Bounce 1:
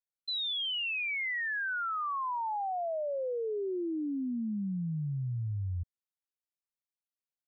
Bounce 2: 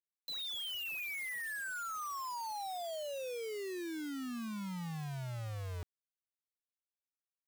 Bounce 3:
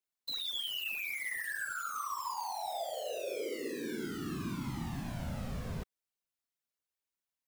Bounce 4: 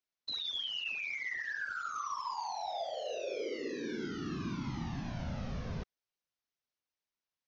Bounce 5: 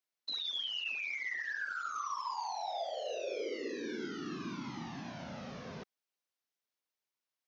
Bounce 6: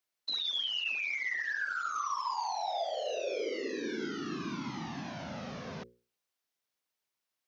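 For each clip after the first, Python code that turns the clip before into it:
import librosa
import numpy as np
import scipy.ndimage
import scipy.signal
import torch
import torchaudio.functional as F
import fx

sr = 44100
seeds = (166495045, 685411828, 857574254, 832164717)

y1 = fx.quant_dither(x, sr, seeds[0], bits=6, dither='none')
y1 = F.gain(torch.from_numpy(y1), -8.5).numpy()
y2 = fx.whisperise(y1, sr, seeds[1])
y2 = F.gain(torch.from_numpy(y2), 2.5).numpy()
y3 = scipy.signal.sosfilt(scipy.signal.butter(16, 6400.0, 'lowpass', fs=sr, output='sos'), y2)
y4 = scipy.signal.sosfilt(scipy.signal.butter(2, 230.0, 'highpass', fs=sr, output='sos'), y3)
y5 = fx.hum_notches(y4, sr, base_hz=60, count=9)
y5 = F.gain(torch.from_numpy(y5), 4.0).numpy()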